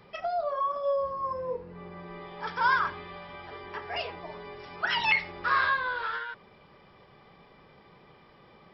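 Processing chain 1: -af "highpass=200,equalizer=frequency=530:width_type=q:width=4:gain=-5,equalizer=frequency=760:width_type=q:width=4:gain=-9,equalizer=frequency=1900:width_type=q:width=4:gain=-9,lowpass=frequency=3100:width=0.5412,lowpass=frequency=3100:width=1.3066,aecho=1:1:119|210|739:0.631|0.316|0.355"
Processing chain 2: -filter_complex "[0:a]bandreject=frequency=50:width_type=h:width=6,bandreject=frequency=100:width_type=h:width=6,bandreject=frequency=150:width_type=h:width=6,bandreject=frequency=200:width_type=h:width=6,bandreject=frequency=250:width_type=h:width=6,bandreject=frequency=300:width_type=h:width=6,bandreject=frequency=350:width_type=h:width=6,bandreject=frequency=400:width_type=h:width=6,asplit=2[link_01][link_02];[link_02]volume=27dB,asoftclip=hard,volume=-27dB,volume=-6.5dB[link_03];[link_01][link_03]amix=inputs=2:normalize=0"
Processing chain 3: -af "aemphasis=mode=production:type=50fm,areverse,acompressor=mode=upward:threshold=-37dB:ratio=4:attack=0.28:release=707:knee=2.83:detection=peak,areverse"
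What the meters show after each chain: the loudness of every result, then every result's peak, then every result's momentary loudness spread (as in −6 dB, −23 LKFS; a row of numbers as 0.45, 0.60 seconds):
−31.5, −27.0, −28.5 LKFS; −14.0, −10.5, −9.0 dBFS; 16, 17, 24 LU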